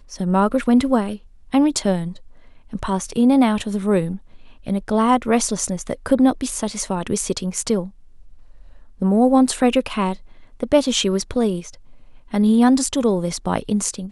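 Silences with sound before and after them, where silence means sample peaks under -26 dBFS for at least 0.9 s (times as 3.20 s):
7.86–9.02 s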